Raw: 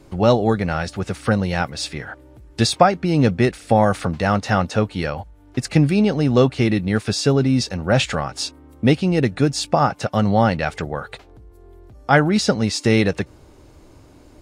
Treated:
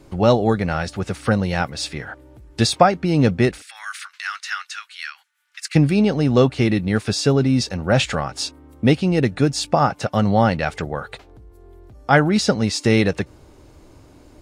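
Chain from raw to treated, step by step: 3.62–5.75 steep high-pass 1400 Hz 36 dB/oct

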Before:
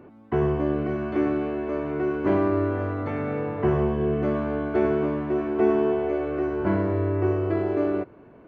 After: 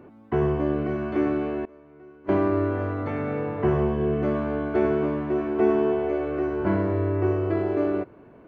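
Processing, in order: 1.65–2.29 gate -18 dBFS, range -22 dB

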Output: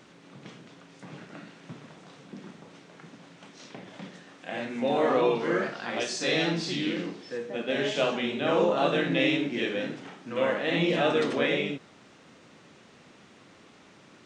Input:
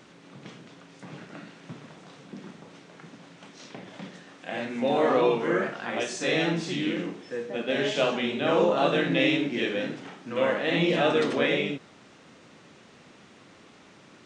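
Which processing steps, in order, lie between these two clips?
5.35–7.38 bell 4600 Hz +9 dB 0.57 oct; gain -1.5 dB

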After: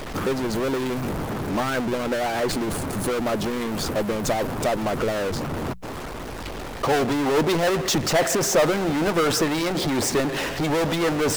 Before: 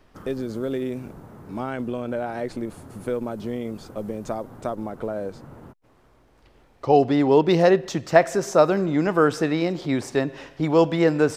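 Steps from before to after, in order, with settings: power-law curve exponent 0.35; notches 60/120/180 Hz; harmonic-percussive split harmonic -8 dB; gain -7 dB

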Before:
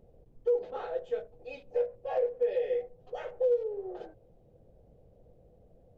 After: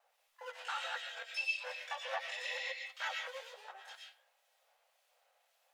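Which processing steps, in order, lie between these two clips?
local time reversal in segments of 0.142 s; inverse Chebyshev high-pass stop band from 320 Hz, stop band 60 dB; speed mistake 24 fps film run at 25 fps; flange 0.39 Hz, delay 8.3 ms, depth 7.6 ms, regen -37%; harmonic tremolo 1.9 Hz, depth 50%, crossover 2300 Hz; harmoniser +12 st -10 dB; on a send: resonant high shelf 1600 Hz +11.5 dB, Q 1.5 + reverb RT60 0.35 s, pre-delay 75 ms, DRR 1.5 dB; on the sum: gain +16 dB

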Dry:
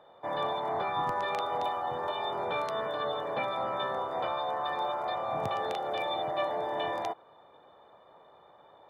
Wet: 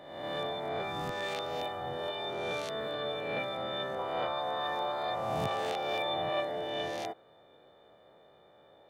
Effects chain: spectral swells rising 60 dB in 1.07 s; bell 1000 Hz -13 dB 0.73 oct, from 3.99 s -4.5 dB, from 6.4 s -13.5 dB; gain -1 dB

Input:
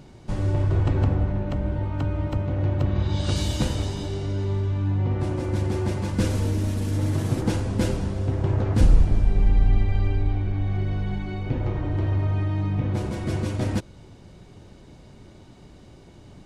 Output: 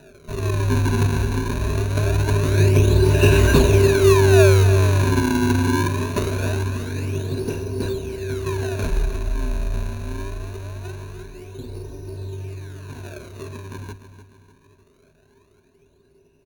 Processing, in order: Doppler pass-by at 3.62, 7 m/s, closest 6.3 m; notch 610 Hz, Q 12; small resonant body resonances 410/2800 Hz, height 13 dB, ringing for 25 ms; decimation with a swept rate 40×, swing 160% 0.23 Hz; ripple EQ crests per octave 1.5, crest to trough 13 dB; on a send: feedback echo 0.299 s, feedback 44%, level -12 dB; on the sum: gain +5.5 dB

